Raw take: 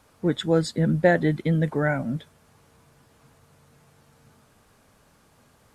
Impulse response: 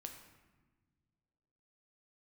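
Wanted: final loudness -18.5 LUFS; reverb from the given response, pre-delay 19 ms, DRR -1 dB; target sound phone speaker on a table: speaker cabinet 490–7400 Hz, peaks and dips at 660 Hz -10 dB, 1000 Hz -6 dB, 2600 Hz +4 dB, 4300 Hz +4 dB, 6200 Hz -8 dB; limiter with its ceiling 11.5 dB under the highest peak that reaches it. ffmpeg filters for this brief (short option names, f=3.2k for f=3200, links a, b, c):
-filter_complex "[0:a]alimiter=limit=-16.5dB:level=0:latency=1,asplit=2[a][b];[1:a]atrim=start_sample=2205,adelay=19[c];[b][c]afir=irnorm=-1:irlink=0,volume=5.5dB[d];[a][d]amix=inputs=2:normalize=0,highpass=f=490:w=0.5412,highpass=f=490:w=1.3066,equalizer=f=660:t=q:w=4:g=-10,equalizer=f=1k:t=q:w=4:g=-6,equalizer=f=2.6k:t=q:w=4:g=4,equalizer=f=4.3k:t=q:w=4:g=4,equalizer=f=6.2k:t=q:w=4:g=-8,lowpass=f=7.4k:w=0.5412,lowpass=f=7.4k:w=1.3066,volume=12.5dB"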